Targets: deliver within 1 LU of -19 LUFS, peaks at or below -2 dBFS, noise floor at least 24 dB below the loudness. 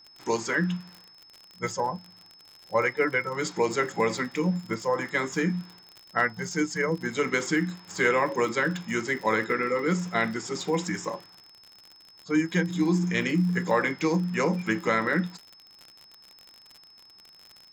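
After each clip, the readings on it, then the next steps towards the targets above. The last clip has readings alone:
ticks 57/s; steady tone 5200 Hz; tone level -51 dBFS; loudness -27.0 LUFS; peak -11.5 dBFS; loudness target -19.0 LUFS
-> de-click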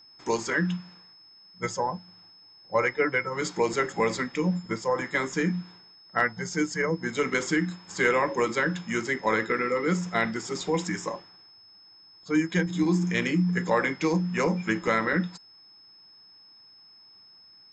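ticks 0/s; steady tone 5200 Hz; tone level -51 dBFS
-> notch 5200 Hz, Q 30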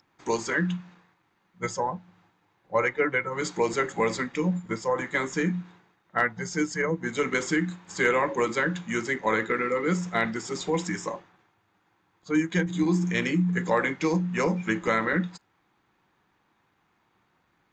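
steady tone none; loudness -27.0 LUFS; peak -11.5 dBFS; loudness target -19.0 LUFS
-> gain +8 dB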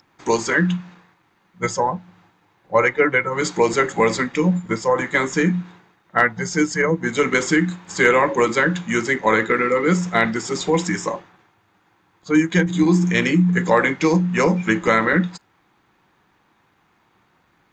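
loudness -19.0 LUFS; peak -3.5 dBFS; noise floor -62 dBFS

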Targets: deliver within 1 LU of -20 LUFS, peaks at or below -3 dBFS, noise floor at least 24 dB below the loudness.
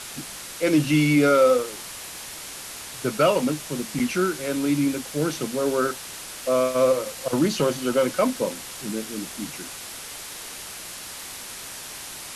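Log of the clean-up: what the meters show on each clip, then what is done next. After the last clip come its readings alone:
noise floor -38 dBFS; noise floor target -49 dBFS; loudness -25.0 LUFS; peak -7.5 dBFS; loudness target -20.0 LUFS
-> noise print and reduce 11 dB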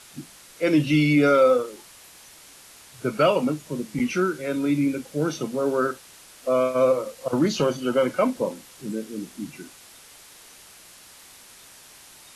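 noise floor -49 dBFS; loudness -23.0 LUFS; peak -7.5 dBFS; loudness target -20.0 LUFS
-> gain +3 dB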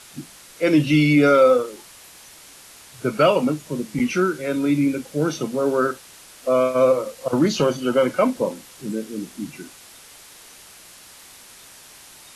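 loudness -20.0 LUFS; peak -4.5 dBFS; noise floor -46 dBFS

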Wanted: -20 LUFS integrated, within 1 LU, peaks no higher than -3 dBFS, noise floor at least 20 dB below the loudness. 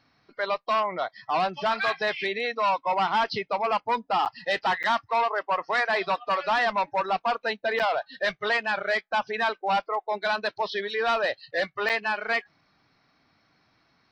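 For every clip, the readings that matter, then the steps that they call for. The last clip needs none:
dropouts 4; longest dropout 8.0 ms; loudness -26.5 LUFS; peak -18.0 dBFS; loudness target -20.0 LUFS
-> interpolate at 4.25/4.83/7.79/11.89, 8 ms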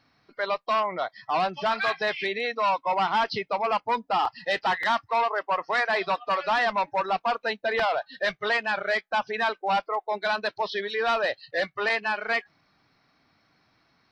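dropouts 0; loudness -26.5 LUFS; peak -15.0 dBFS; loudness target -20.0 LUFS
-> gain +6.5 dB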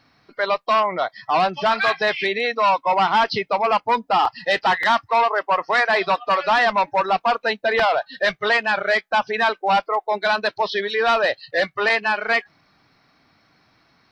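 loudness -20.0 LUFS; peak -8.5 dBFS; noise floor -61 dBFS

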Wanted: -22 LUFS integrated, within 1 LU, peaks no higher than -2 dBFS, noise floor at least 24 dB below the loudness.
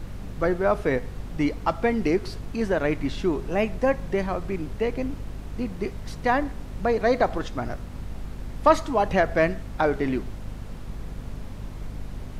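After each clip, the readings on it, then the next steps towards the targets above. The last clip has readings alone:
hum 50 Hz; harmonics up to 250 Hz; hum level -35 dBFS; noise floor -38 dBFS; noise floor target -50 dBFS; loudness -25.5 LUFS; peak -5.0 dBFS; loudness target -22.0 LUFS
-> notches 50/100/150/200/250 Hz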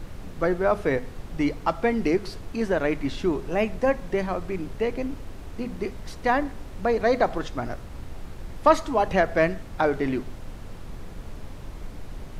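hum none; noise floor -40 dBFS; noise floor target -50 dBFS
-> noise print and reduce 10 dB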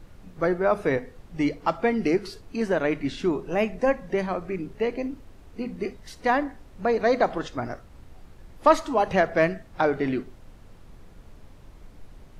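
noise floor -49 dBFS; noise floor target -50 dBFS
-> noise print and reduce 6 dB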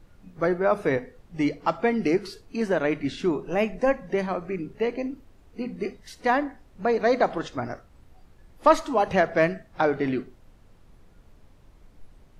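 noise floor -55 dBFS; loudness -26.0 LUFS; peak -5.0 dBFS; loudness target -22.0 LUFS
-> gain +4 dB; limiter -2 dBFS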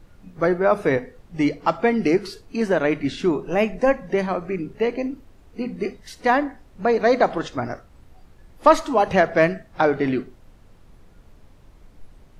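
loudness -22.0 LUFS; peak -2.0 dBFS; noise floor -51 dBFS

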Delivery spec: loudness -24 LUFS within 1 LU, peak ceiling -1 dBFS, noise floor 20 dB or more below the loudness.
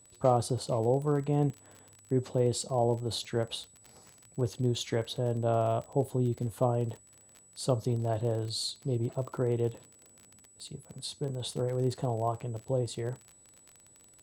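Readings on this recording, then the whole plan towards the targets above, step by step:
ticks 34/s; steady tone 7900 Hz; tone level -57 dBFS; loudness -31.5 LUFS; peak -12.0 dBFS; loudness target -24.0 LUFS
-> de-click; notch 7900 Hz, Q 30; gain +7.5 dB

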